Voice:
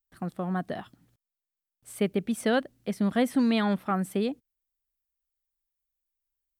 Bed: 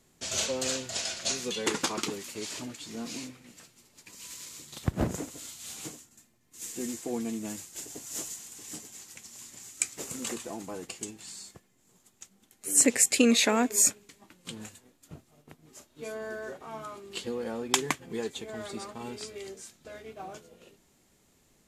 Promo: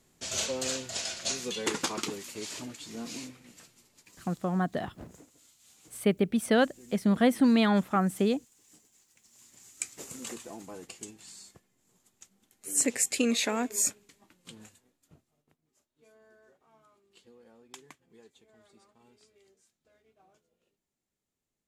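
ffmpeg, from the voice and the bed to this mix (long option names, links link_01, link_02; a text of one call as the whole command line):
ffmpeg -i stem1.wav -i stem2.wav -filter_complex "[0:a]adelay=4050,volume=1.5dB[link_01];[1:a]volume=11.5dB,afade=type=out:start_time=3.73:duration=0.65:silence=0.149624,afade=type=in:start_time=9.14:duration=0.79:silence=0.223872,afade=type=out:start_time=14.02:duration=1.64:silence=0.125893[link_02];[link_01][link_02]amix=inputs=2:normalize=0" out.wav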